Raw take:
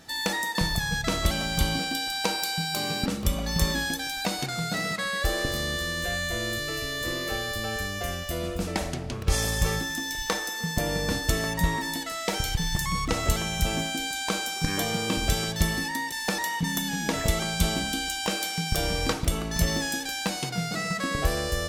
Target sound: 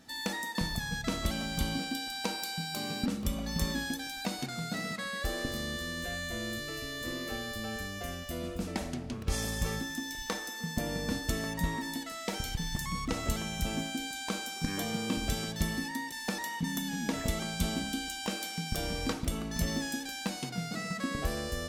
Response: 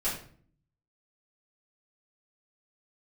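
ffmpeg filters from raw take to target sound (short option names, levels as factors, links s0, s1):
-af "equalizer=f=240:w=3.6:g=10.5,volume=0.398"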